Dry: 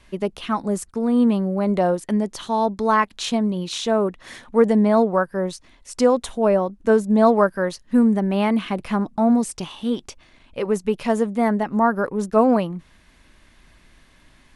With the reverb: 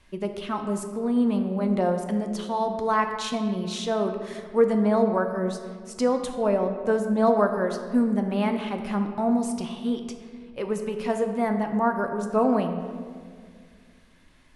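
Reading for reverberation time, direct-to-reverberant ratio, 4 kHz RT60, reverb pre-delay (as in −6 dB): 2.0 s, 5.0 dB, 1.0 s, 10 ms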